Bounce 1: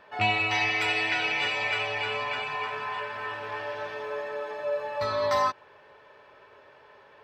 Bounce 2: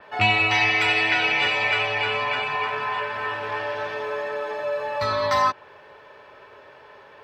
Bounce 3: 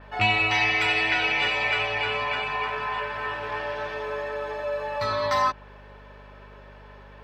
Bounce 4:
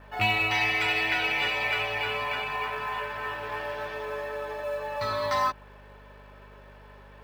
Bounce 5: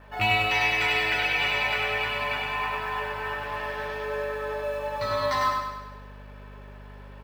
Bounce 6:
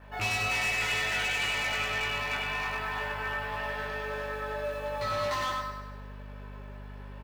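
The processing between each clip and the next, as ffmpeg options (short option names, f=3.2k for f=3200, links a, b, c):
-filter_complex "[0:a]acrossover=split=310|770|3700[a][b][c][d];[b]alimiter=level_in=9.5dB:limit=-24dB:level=0:latency=1,volume=-9.5dB[e];[a][e][c][d]amix=inputs=4:normalize=0,adynamicequalizer=threshold=0.00631:dfrequency=4900:dqfactor=0.7:tfrequency=4900:tqfactor=0.7:attack=5:release=100:ratio=0.375:range=3:mode=cutabove:tftype=highshelf,volume=6.5dB"
-af "aeval=exprs='val(0)+0.00562*(sin(2*PI*50*n/s)+sin(2*PI*2*50*n/s)/2+sin(2*PI*3*50*n/s)/3+sin(2*PI*4*50*n/s)/4+sin(2*PI*5*50*n/s)/5)':c=same,volume=-2.5dB"
-af "acrusher=bits=7:mode=log:mix=0:aa=0.000001,volume=-3dB"
-af "aecho=1:1:100|200|300|400|500|600|700:0.631|0.334|0.177|0.0939|0.0498|0.0264|0.014"
-filter_complex "[0:a]asoftclip=type=hard:threshold=-25dB,asplit=2[a][b];[b]adelay=20,volume=-4dB[c];[a][c]amix=inputs=2:normalize=0,volume=-3dB"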